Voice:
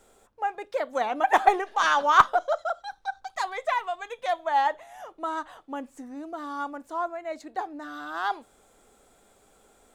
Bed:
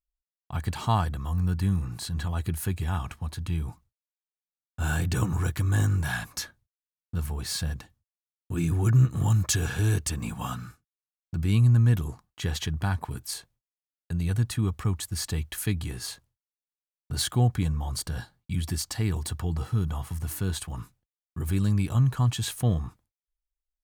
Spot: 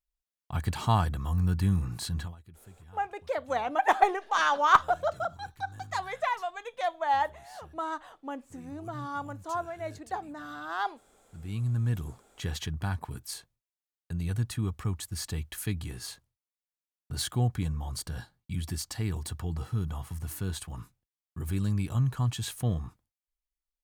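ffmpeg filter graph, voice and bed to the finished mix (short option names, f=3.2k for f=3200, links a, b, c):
-filter_complex "[0:a]adelay=2550,volume=-3dB[a];[1:a]volume=18.5dB,afade=t=out:st=2.12:d=0.24:silence=0.0707946,afade=t=in:st=11.2:d=1.02:silence=0.112202[b];[a][b]amix=inputs=2:normalize=0"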